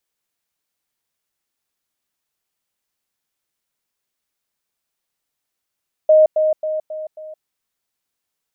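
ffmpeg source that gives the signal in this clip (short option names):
-f lavfi -i "aevalsrc='pow(10,(-7-6*floor(t/0.27))/20)*sin(2*PI*622*t)*clip(min(mod(t,0.27),0.17-mod(t,0.27))/0.005,0,1)':d=1.35:s=44100"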